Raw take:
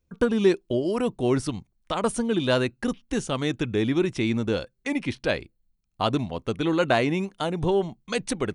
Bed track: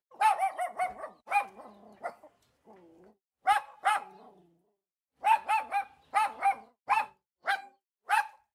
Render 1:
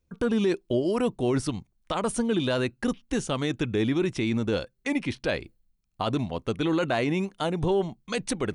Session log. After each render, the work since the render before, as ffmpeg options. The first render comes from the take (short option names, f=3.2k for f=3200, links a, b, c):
-af "areverse,acompressor=mode=upward:threshold=-41dB:ratio=2.5,areverse,alimiter=limit=-16dB:level=0:latency=1:release=17"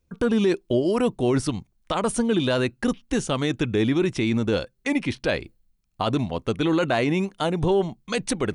-af "volume=3.5dB"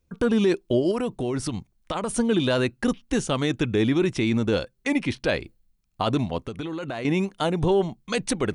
-filter_complex "[0:a]asettb=1/sr,asplit=3[a][b][c];[a]atrim=end=0.914[d];[b]atrim=start=0.91:end=2.14,asetpts=PTS-STARTPTS,afade=t=in:d=0.004:c=qsin,afade=t=out:st=1.226:d=0.004:c=qsin,acompressor=threshold=-23dB:ratio=4:attack=3.2:release=140:knee=1:detection=peak[e];[c]atrim=start=2.136[f];[d][e]acrossfade=d=0.004:c1=hsin:c2=qsin[g];[g][f]acrossfade=d=0.004:c1=qsin:c2=hsin,asettb=1/sr,asplit=3[h][i][j];[h]atrim=end=6.464[k];[i]atrim=start=6.46:end=7.05,asetpts=PTS-STARTPTS,afade=t=in:d=0.004:c=qsin,afade=t=out:st=0.586:d=0.004:c=qsin,acompressor=threshold=-27dB:ratio=12:attack=3.2:release=140:knee=1:detection=peak[l];[j]atrim=start=7.046[m];[k][l]acrossfade=d=0.004:c1=hsin:c2=qsin[n];[n][m]acrossfade=d=0.004:c1=qsin:c2=hsin"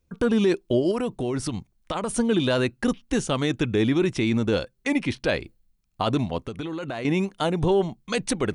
-af anull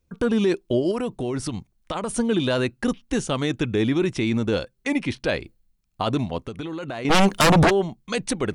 -filter_complex "[0:a]asplit=3[a][b][c];[a]afade=t=out:st=7.09:d=0.02[d];[b]aeval=exprs='0.251*sin(PI/2*4.47*val(0)/0.251)':c=same,afade=t=in:st=7.09:d=0.02,afade=t=out:st=7.69:d=0.02[e];[c]afade=t=in:st=7.69:d=0.02[f];[d][e][f]amix=inputs=3:normalize=0"